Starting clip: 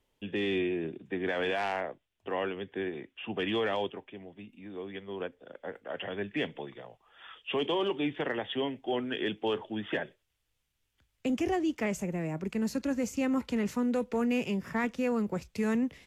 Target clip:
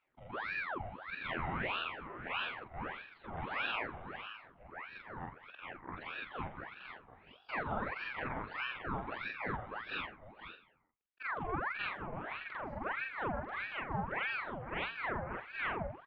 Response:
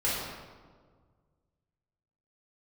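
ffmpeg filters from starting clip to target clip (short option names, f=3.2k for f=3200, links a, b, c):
-filter_complex "[0:a]afftfilt=real='re':imag='-im':win_size=4096:overlap=0.75,lowpass=f=1.3k:w=0.5412,lowpass=f=1.3k:w=1.3066,asplit=2[a][b];[b]aecho=0:1:500:0.316[c];[a][c]amix=inputs=2:normalize=0,agate=range=-33dB:threshold=-51dB:ratio=3:detection=peak,highpass=f=820:p=1,aemphasis=mode=production:type=75fm,asplit=2[d][e];[e]aecho=0:1:89|178|267|356:0.224|0.0828|0.0306|0.0113[f];[d][f]amix=inputs=2:normalize=0,acompressor=mode=upward:threshold=-56dB:ratio=2.5,aeval=exprs='val(0)*sin(2*PI*1200*n/s+1200*0.75/1.6*sin(2*PI*1.6*n/s))':c=same,volume=7dB"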